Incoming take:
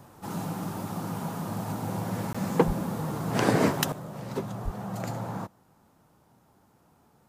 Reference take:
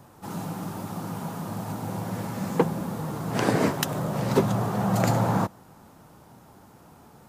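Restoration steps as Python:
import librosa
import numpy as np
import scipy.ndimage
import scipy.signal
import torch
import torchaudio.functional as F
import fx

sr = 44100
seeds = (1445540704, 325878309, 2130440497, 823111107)

y = fx.fix_declip(x, sr, threshold_db=-7.5)
y = fx.highpass(y, sr, hz=140.0, slope=24, at=(2.66, 2.78), fade=0.02)
y = fx.highpass(y, sr, hz=140.0, slope=24, at=(4.64, 4.76), fade=0.02)
y = fx.fix_interpolate(y, sr, at_s=(2.33,), length_ms=15.0)
y = fx.fix_level(y, sr, at_s=3.92, step_db=11.0)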